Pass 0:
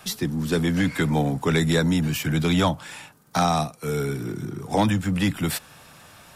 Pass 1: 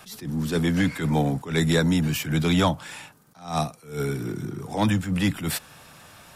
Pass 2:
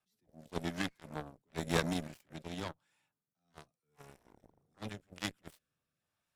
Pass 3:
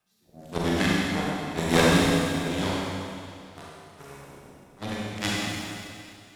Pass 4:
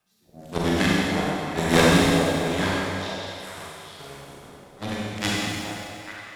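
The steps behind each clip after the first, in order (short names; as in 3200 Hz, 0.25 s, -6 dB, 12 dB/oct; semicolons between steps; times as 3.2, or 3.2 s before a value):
attack slew limiter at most 140 dB/s
rotary speaker horn 0.9 Hz; added harmonics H 3 -9 dB, 5 -42 dB, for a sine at -11 dBFS; gain -3.5 dB
Schroeder reverb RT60 2.4 s, combs from 32 ms, DRR -6 dB; gain +8 dB
delay with a stepping band-pass 0.423 s, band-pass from 580 Hz, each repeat 1.4 oct, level -4.5 dB; gain +2.5 dB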